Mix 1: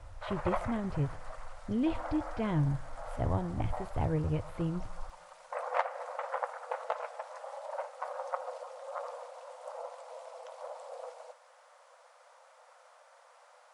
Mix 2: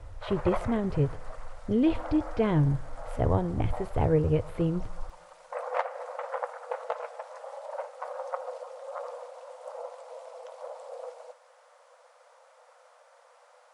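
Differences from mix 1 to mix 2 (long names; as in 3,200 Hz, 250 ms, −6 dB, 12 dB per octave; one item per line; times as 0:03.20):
speech +5.0 dB
master: add parametric band 450 Hz +7.5 dB 0.51 octaves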